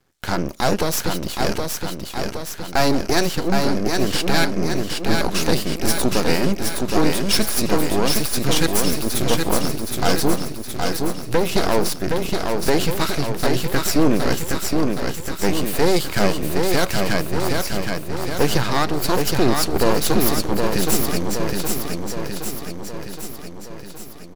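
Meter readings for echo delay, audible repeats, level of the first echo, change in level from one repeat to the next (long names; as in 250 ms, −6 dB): 768 ms, 7, −4.0 dB, −4.5 dB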